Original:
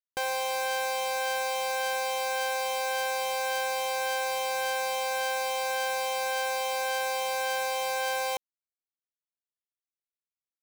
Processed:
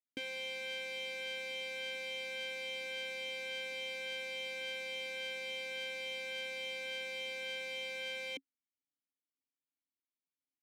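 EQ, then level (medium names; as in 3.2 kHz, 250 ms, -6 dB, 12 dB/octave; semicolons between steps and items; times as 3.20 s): vowel filter i; tilt shelf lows +7 dB, about 1.1 kHz; treble shelf 3.5 kHz +11 dB; +6.0 dB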